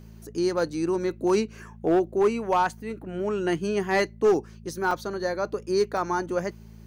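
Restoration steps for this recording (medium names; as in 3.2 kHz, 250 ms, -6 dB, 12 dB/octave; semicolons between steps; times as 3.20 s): clip repair -15 dBFS; de-hum 55 Hz, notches 4; interpolate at 4.91/5.97 s, 2.7 ms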